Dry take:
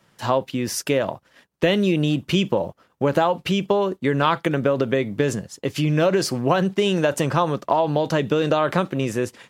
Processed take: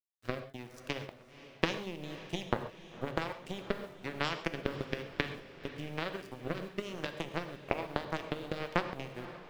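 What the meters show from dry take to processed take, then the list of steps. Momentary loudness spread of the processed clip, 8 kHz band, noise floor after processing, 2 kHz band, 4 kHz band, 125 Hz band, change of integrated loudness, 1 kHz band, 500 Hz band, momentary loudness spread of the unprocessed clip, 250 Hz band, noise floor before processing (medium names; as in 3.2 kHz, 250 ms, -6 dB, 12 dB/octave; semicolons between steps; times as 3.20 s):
9 LU, -21.5 dB, -56 dBFS, -10.5 dB, -13.0 dB, -18.0 dB, -16.5 dB, -16.5 dB, -18.5 dB, 6 LU, -18.0 dB, -63 dBFS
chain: treble shelf 4.6 kHz -5.5 dB; compression 2:1, threshold -23 dBFS, peak gain reduction 6 dB; power-law waveshaper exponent 3; rotary cabinet horn 1.1 Hz; bit crusher 11-bit; on a send: echo that smears into a reverb 526 ms, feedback 57%, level -14.5 dB; on the sum: gated-style reverb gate 160 ms flat, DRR 8.5 dB; trim +3.5 dB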